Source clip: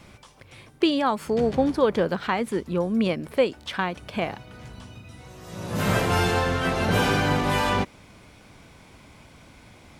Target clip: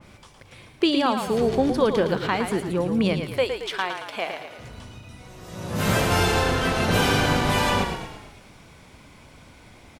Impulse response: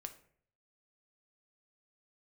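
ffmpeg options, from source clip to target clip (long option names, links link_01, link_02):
-filter_complex "[0:a]asettb=1/sr,asplit=3[link_01][link_02][link_03];[link_01]atrim=end=3.214[link_04];[link_02]atrim=start=3.21:end=4.59,asetpts=PTS-STARTPTS,afade=type=in:duration=0.004:curve=qsin,afade=type=out:start_time=1.376:duration=0.004:curve=qsin,highpass=480[link_05];[link_03]atrim=start=4.586[link_06];[link_04][link_05]acrossfade=duration=0.004:curve1=hsin:curve2=qsin[link_07];[link_07][link_06]acrossfade=duration=0.004:curve1=qsin:curve2=hsin,asplit=7[link_08][link_09][link_10][link_11][link_12][link_13][link_14];[link_09]adelay=112,afreqshift=-32,volume=-7dB[link_15];[link_10]adelay=224,afreqshift=-64,volume=-12.5dB[link_16];[link_11]adelay=336,afreqshift=-96,volume=-18dB[link_17];[link_12]adelay=448,afreqshift=-128,volume=-23.5dB[link_18];[link_13]adelay=560,afreqshift=-160,volume=-29.1dB[link_19];[link_14]adelay=672,afreqshift=-192,volume=-34.6dB[link_20];[link_08][link_15][link_16][link_17][link_18][link_19][link_20]amix=inputs=7:normalize=0,adynamicequalizer=threshold=0.0158:dfrequency=2600:dqfactor=0.7:tfrequency=2600:tqfactor=0.7:attack=5:release=100:ratio=0.375:range=2:mode=boostabove:tftype=highshelf"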